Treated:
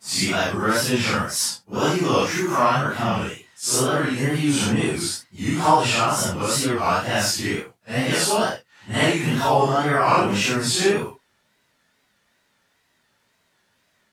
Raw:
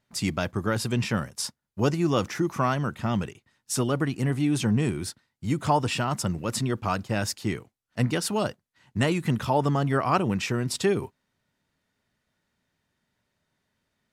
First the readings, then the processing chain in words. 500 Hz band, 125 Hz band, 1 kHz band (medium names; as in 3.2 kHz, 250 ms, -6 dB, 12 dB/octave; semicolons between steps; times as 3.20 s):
+6.0 dB, +0.5 dB, +8.5 dB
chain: phase randomisation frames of 200 ms; bass shelf 310 Hz -11.5 dB; in parallel at -2 dB: compression, threshold -38 dBFS, peak gain reduction 17 dB; on the sum: wow and flutter 100 cents; trim +8 dB